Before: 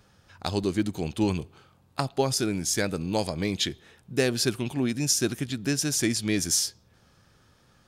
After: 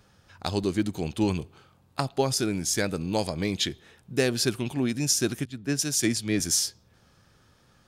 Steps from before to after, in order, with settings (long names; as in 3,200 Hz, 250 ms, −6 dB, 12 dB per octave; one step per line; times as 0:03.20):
0:05.45–0:06.40: multiband upward and downward expander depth 100%